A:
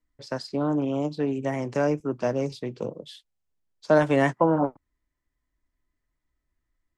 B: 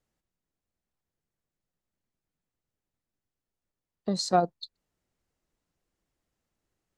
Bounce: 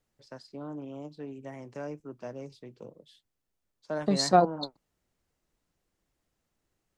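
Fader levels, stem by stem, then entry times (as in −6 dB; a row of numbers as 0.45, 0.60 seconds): −14.5, +2.5 decibels; 0.00, 0.00 seconds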